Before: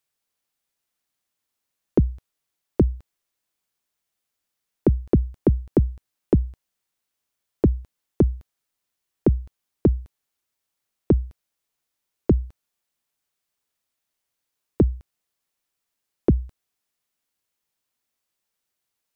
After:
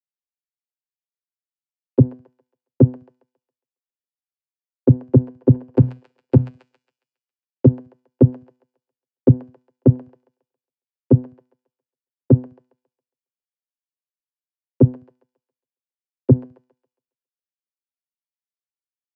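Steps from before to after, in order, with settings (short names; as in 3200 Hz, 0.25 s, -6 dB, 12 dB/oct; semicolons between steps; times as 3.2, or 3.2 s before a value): 5.75–6.48 half-wave gain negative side -12 dB; de-hum 217.3 Hz, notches 40; vocoder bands 8, saw 126 Hz; thin delay 0.137 s, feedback 65%, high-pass 1700 Hz, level -4 dB; maximiser +14 dB; three-band expander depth 100%; gain -6.5 dB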